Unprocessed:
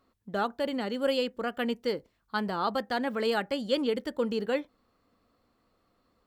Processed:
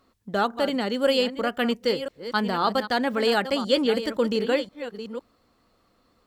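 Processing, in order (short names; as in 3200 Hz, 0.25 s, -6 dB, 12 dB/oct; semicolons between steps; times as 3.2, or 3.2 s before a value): reverse delay 0.521 s, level -11 dB; bell 5800 Hz +3.5 dB 2 oct; gain +5.5 dB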